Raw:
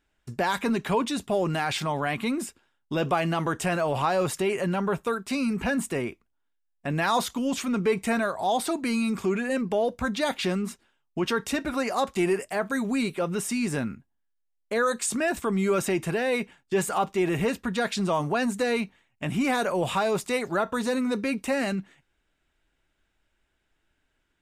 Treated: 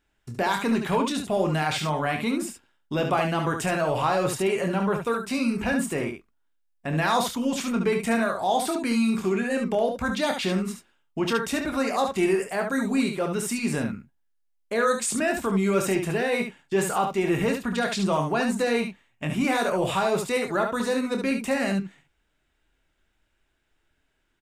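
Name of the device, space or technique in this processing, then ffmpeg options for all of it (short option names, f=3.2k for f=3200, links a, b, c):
slapback doubling: -filter_complex "[0:a]asplit=3[a][b][c];[b]adelay=26,volume=-8dB[d];[c]adelay=71,volume=-6dB[e];[a][d][e]amix=inputs=3:normalize=0"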